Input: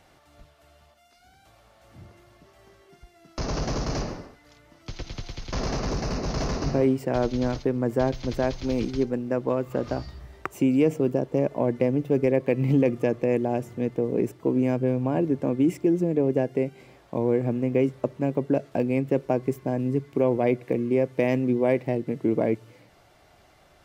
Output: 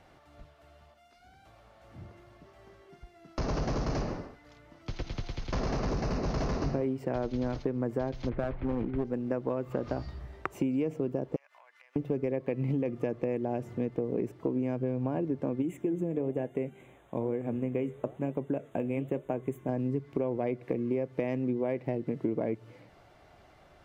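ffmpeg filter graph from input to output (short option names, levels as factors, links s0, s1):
-filter_complex "[0:a]asettb=1/sr,asplit=3[s0][s1][s2];[s0]atrim=end=8.294[s3];[s1]atrim=start=8.29:end=9.05,asetpts=PTS-STARTPTS,afade=t=in:d=0.004:c=qsin,afade=t=out:st=0.756:d=0.004:c=qsin,lowpass=f=2200:w=0.5412,lowpass=f=2200:w=1.3066,aeval=exprs='clip(val(0),-1,0.0562)':c=same[s4];[s2]atrim=start=9.046[s5];[s3][s4]acrossfade=d=0.004:c1=hsin:c2=qsin[s6];[s6][s5]acrossfade=d=0.004:c1=qsin:c2=hsin,asettb=1/sr,asplit=3[s7][s8][s9];[s7]atrim=end=11.364[s10];[s8]atrim=start=11.36:end=11.96,asetpts=PTS-STARTPTS,afade=t=in:d=0.004:c=qsin,afade=t=out:st=0.596:d=0.004:c=qsin,highpass=f=1300:w=0.5412,highpass=f=1300:w=1.3066,acompressor=threshold=0.00251:ratio=12:attack=3.2:release=140:knee=1:detection=peak[s11];[s9]atrim=start=11.956[s12];[s10][s11]acrossfade=d=0.004:c1=hsin:c2=qsin[s13];[s13][s12]acrossfade=d=0.004:c1=qsin:c2=hsin,asettb=1/sr,asplit=3[s14][s15][s16];[s14]atrim=end=15.624[s17];[s15]atrim=start=15.62:end=19.69,asetpts=PTS-STARTPTS,afade=t=in:d=0.004:c=qsin,afade=t=out:st=4.066:d=0.004:c=qsin,asuperstop=centerf=4900:order=12:qfactor=1.9,highshelf=f=4600:g=9,flanger=delay=3.9:depth=7.5:regen=-83:speed=1.1:shape=sinusoidal[s18];[s16]atrim=start=19.686[s19];[s17][s18]acrossfade=d=0.004:c1=hsin:c2=qsin[s20];[s20][s19]acrossfade=d=0.004:c1=qsin:c2=hsin,highshelf=f=4100:g=-11,acompressor=threshold=0.0447:ratio=6"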